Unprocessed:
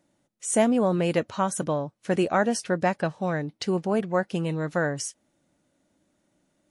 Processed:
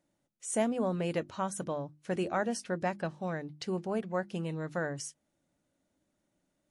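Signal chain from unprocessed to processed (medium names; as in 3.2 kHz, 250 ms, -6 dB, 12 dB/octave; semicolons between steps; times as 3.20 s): bass shelf 79 Hz +6 dB; hum notches 50/100/150/200/250/300/350 Hz; trim -8.5 dB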